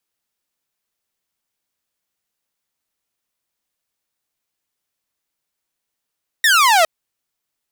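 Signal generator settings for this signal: laser zap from 1900 Hz, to 620 Hz, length 0.41 s saw, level -7.5 dB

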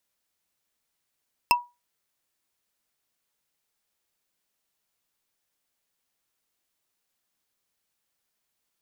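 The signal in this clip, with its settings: wood hit bar, lowest mode 968 Hz, decay 0.24 s, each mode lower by 1.5 dB, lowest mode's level -13 dB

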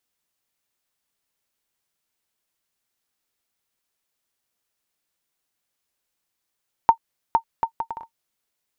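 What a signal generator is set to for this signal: bouncing ball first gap 0.46 s, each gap 0.61, 912 Hz, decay 88 ms -3 dBFS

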